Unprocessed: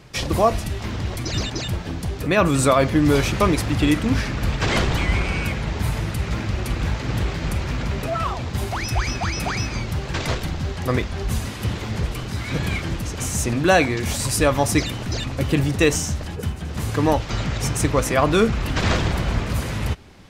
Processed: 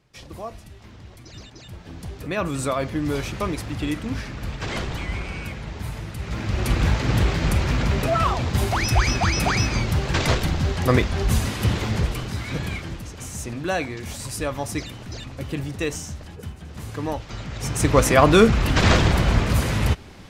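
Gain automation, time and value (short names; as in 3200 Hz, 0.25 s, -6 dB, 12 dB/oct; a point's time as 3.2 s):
1.59 s -17 dB
2.02 s -8 dB
6.14 s -8 dB
6.7 s +3.5 dB
11.83 s +3.5 dB
13.15 s -9 dB
17.48 s -9 dB
17.97 s +3.5 dB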